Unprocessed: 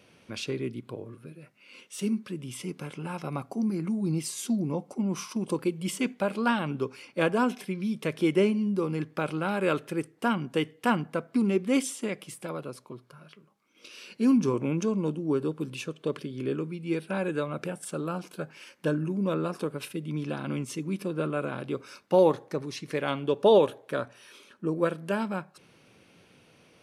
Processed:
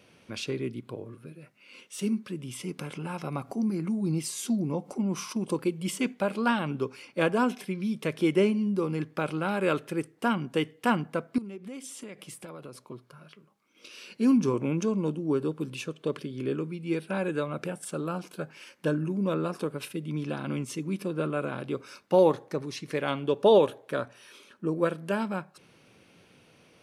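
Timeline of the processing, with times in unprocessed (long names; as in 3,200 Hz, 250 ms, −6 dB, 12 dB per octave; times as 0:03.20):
0:02.79–0:05.33: upward compression, threshold −32 dBFS
0:11.38–0:12.85: downward compressor, threshold −38 dBFS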